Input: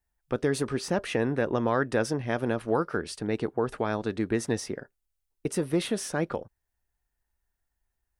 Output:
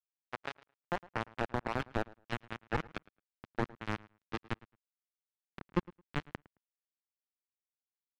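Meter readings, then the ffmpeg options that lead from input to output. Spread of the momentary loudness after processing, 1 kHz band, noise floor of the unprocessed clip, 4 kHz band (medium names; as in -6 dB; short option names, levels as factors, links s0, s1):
11 LU, -6.5 dB, -82 dBFS, -10.0 dB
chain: -filter_complex "[0:a]acrossover=split=380|1300|2300[s0][s1][s2][s3];[s1]volume=13.3,asoftclip=hard,volume=0.075[s4];[s0][s4][s2][s3]amix=inputs=4:normalize=0,flanger=delay=7.5:depth=4.3:regen=-4:speed=0.59:shape=triangular,adynamicequalizer=threshold=0.00447:dfrequency=790:dqfactor=2.4:tfrequency=790:tqfactor=2.4:attack=5:release=100:ratio=0.375:range=3.5:mode=boostabove:tftype=bell,acrusher=bits=2:mix=0:aa=0.5,asplit=2[s5][s6];[s6]highpass=f=720:p=1,volume=14.1,asoftclip=type=tanh:threshold=0.251[s7];[s5][s7]amix=inputs=2:normalize=0,lowpass=f=1200:p=1,volume=0.501,alimiter=limit=0.0794:level=0:latency=1:release=424,asubboost=boost=9.5:cutoff=200,asplit=2[s8][s9];[s9]adelay=109,lowpass=f=3300:p=1,volume=0.0841,asplit=2[s10][s11];[s11]adelay=109,lowpass=f=3300:p=1,volume=0.17[s12];[s8][s10][s12]amix=inputs=3:normalize=0,volume=1.41"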